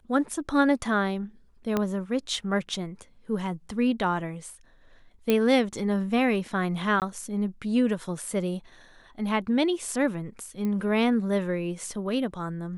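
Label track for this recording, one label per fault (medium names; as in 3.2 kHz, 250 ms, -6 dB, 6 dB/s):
1.770000	1.770000	pop -12 dBFS
5.300000	5.300000	pop -10 dBFS
7.000000	7.020000	dropout 18 ms
10.650000	10.650000	pop -20 dBFS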